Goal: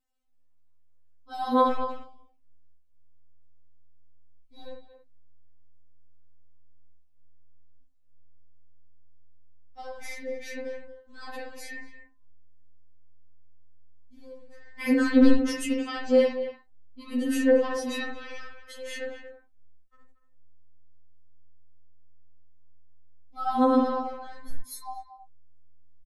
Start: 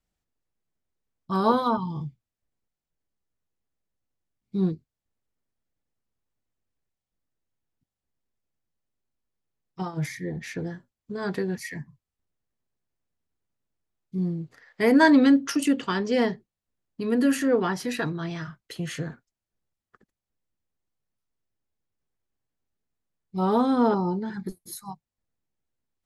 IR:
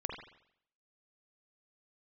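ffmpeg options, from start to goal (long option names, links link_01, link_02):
-filter_complex "[0:a]asplit=2[link_01][link_02];[link_02]adelay=230,highpass=300,lowpass=3400,asoftclip=type=hard:threshold=-16.5dB,volume=-11dB[link_03];[link_01][link_03]amix=inputs=2:normalize=0,asubboost=boost=9:cutoff=80[link_04];[1:a]atrim=start_sample=2205,afade=type=out:start_time=0.14:duration=0.01,atrim=end_sample=6615[link_05];[link_04][link_05]afir=irnorm=-1:irlink=0,afftfilt=real='re*3.46*eq(mod(b,12),0)':imag='im*3.46*eq(mod(b,12),0)':win_size=2048:overlap=0.75,volume=1dB"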